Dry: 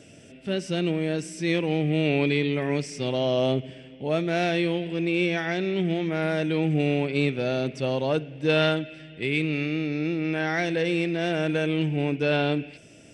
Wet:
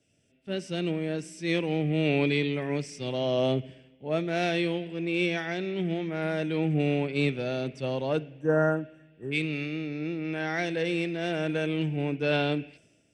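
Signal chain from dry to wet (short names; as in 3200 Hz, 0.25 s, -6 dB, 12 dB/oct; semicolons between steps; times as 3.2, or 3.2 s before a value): spectral repair 8.37–9.29, 1900–5500 Hz before; three-band expander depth 70%; gain -3 dB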